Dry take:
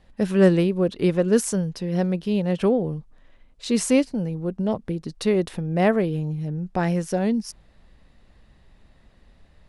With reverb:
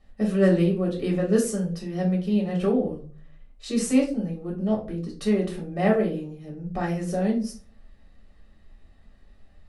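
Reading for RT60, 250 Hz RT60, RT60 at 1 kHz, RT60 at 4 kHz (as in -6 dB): 0.40 s, 0.50 s, 0.30 s, 0.25 s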